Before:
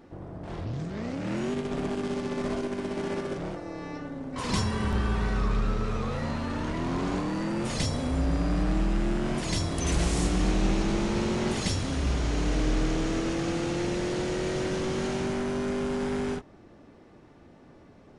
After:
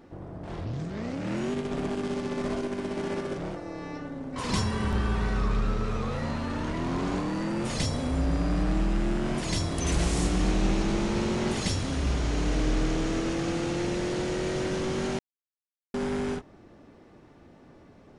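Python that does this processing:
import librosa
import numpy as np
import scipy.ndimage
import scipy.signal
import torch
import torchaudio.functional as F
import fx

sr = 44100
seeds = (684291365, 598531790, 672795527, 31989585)

y = fx.edit(x, sr, fx.silence(start_s=15.19, length_s=0.75), tone=tone)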